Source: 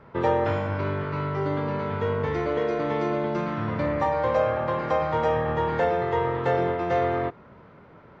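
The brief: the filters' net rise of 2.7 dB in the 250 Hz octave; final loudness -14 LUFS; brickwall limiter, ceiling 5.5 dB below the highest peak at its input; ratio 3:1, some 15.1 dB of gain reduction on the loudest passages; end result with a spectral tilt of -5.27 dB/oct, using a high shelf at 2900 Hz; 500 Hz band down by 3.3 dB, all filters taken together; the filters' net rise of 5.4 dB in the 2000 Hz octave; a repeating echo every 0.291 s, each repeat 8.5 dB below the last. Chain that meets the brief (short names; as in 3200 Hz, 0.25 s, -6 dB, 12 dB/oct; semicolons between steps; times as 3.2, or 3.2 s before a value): bell 250 Hz +6 dB; bell 500 Hz -6 dB; bell 2000 Hz +5 dB; high shelf 2900 Hz +5.5 dB; compressor 3:1, threshold -42 dBFS; limiter -32.5 dBFS; feedback echo 0.291 s, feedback 38%, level -8.5 dB; gain +27 dB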